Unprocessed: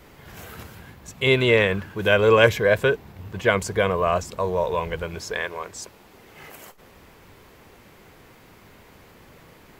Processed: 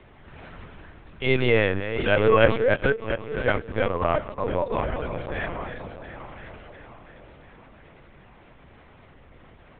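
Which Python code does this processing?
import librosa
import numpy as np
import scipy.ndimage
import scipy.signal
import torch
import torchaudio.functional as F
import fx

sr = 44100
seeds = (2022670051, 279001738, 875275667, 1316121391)

y = fx.reverse_delay_fb(x, sr, ms=348, feedback_pct=67, wet_db=-10)
y = fx.transient(y, sr, attack_db=-3, sustain_db=fx.steps((0.0, 1.0), (2.56, -11.0), (4.69, 4.0)))
y = fx.lpc_vocoder(y, sr, seeds[0], excitation='pitch_kept', order=10)
y = fx.air_absorb(y, sr, metres=180.0)
y = y * 10.0 ** (-1.0 / 20.0)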